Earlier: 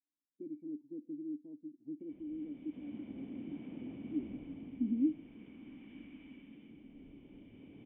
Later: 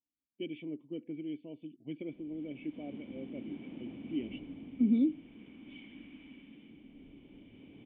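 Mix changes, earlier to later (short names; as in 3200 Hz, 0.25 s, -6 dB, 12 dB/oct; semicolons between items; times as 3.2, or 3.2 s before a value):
speech: remove vocal tract filter u; master: remove air absorption 290 m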